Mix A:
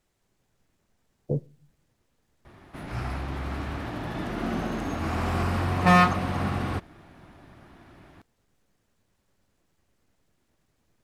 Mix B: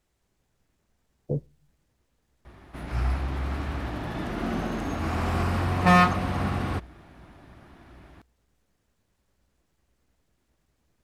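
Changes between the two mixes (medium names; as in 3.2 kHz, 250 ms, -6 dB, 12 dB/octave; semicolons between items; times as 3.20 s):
speech: send -8.0 dB; master: add peaking EQ 60 Hz +14.5 dB 0.22 oct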